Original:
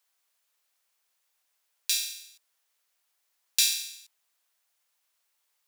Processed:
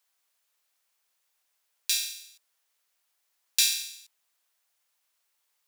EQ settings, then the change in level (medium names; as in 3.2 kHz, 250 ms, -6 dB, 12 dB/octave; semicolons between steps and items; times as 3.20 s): dynamic bell 1.2 kHz, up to +3 dB, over -41 dBFS, Q 0.77; 0.0 dB